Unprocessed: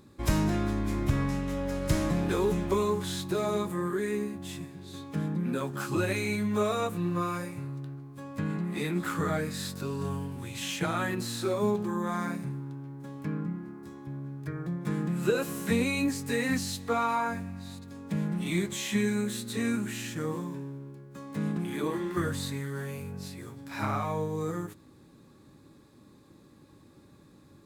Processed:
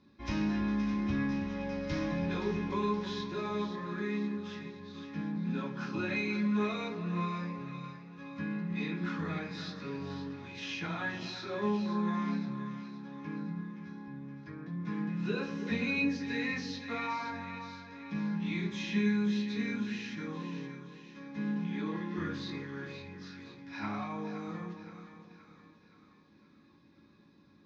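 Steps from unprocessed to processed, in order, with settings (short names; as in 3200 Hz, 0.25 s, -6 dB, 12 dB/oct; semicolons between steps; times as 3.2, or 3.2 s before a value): steep low-pass 6000 Hz 72 dB/oct; split-band echo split 1100 Hz, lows 0.322 s, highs 0.521 s, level -9.5 dB; reverb RT60 0.40 s, pre-delay 3 ms, DRR -3.5 dB; gain -8.5 dB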